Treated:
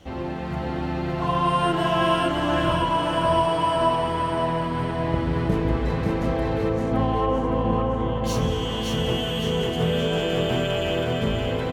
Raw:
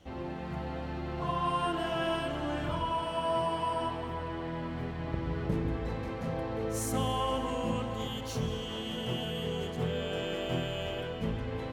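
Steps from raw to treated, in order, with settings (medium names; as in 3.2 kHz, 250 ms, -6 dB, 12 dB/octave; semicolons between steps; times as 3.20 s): 6.69–8.24 s: Bessel low-pass 1.2 kHz, order 2; feedback delay 566 ms, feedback 45%, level -4 dB; trim +8.5 dB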